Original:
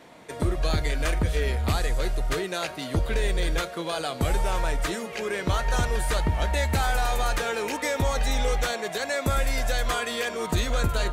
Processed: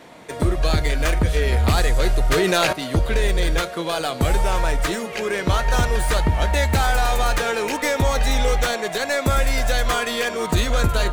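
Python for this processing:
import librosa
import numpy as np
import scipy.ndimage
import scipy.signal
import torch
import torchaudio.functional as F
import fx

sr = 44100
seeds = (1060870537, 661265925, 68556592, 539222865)

y = fx.tracing_dist(x, sr, depth_ms=0.04)
y = fx.env_flatten(y, sr, amount_pct=70, at=(1.52, 2.73))
y = y * 10.0 ** (5.5 / 20.0)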